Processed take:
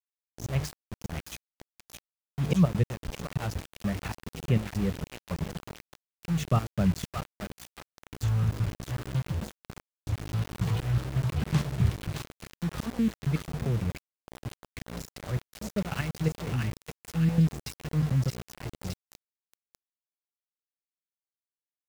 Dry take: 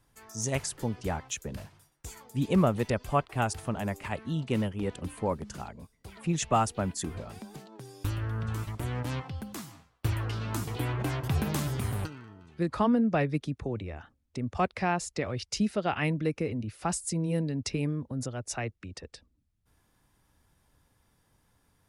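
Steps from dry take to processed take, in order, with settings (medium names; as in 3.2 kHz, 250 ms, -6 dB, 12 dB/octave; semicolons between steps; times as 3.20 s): low-pass 4.5 kHz 12 dB/octave; resonant low shelf 210 Hz +6.5 dB, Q 3; hum notches 50/100/150 Hz; slow attack 182 ms; trance gate ".x..xxxx..xxx.x." 164 bpm -12 dB; rotary cabinet horn 1.1 Hz; hum 60 Hz, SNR 12 dB; thinning echo 619 ms, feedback 67%, high-pass 1.1 kHz, level -3 dB; small samples zeroed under -35.5 dBFS; trim +2 dB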